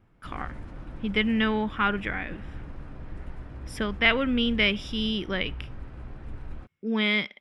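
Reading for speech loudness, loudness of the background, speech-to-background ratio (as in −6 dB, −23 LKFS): −26.0 LKFS, −42.5 LKFS, 16.5 dB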